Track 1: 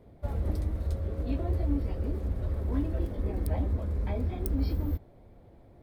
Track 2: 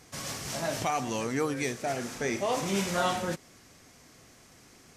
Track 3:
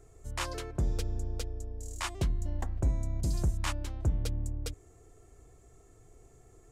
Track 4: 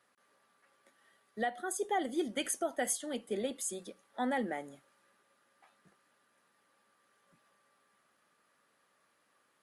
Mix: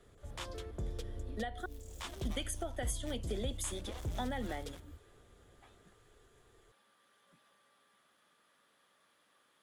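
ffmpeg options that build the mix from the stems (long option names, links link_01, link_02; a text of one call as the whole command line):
ffmpeg -i stem1.wav -i stem2.wav -i stem3.wav -i stem4.wav -filter_complex "[0:a]acompressor=threshold=-34dB:ratio=6,volume=-12dB[link_01];[1:a]aeval=exprs='0.168*(cos(1*acos(clip(val(0)/0.168,-1,1)))-cos(1*PI/2))+0.075*(cos(3*acos(clip(val(0)/0.168,-1,1)))-cos(3*PI/2))+0.0168*(cos(4*acos(clip(val(0)/0.168,-1,1)))-cos(4*PI/2))+0.0531*(cos(5*acos(clip(val(0)/0.168,-1,1)))-cos(5*PI/2))+0.0335*(cos(7*acos(clip(val(0)/0.168,-1,1)))-cos(7*PI/2))':channel_layout=same,highshelf=frequency=10000:gain=11.5,adelay=1450,volume=-16.5dB[link_02];[2:a]equalizer=frequency=460:width=1.9:gain=6.5,volume=-10.5dB[link_03];[3:a]volume=1dB,asplit=3[link_04][link_05][link_06];[link_04]atrim=end=1.66,asetpts=PTS-STARTPTS,afade=type=out:start_time=1.656:duration=0.004:curve=hsin[link_07];[link_05]atrim=start=1.66:end=2.25,asetpts=PTS-STARTPTS,volume=0[link_08];[link_06]atrim=start=2.25,asetpts=PTS-STARTPTS,afade=type=in:duration=0.004:curve=hsin[link_09];[link_07][link_08][link_09]concat=n=3:v=0:a=1,asplit=2[link_10][link_11];[link_11]apad=whole_len=257094[link_12];[link_01][link_12]sidechaincompress=threshold=-37dB:ratio=8:attack=16:release=884[link_13];[link_13][link_02][link_03][link_10]amix=inputs=4:normalize=0,equalizer=frequency=3400:width_type=o:width=0.27:gain=9,acrossover=split=140[link_14][link_15];[link_15]acompressor=threshold=-36dB:ratio=10[link_16];[link_14][link_16]amix=inputs=2:normalize=0" out.wav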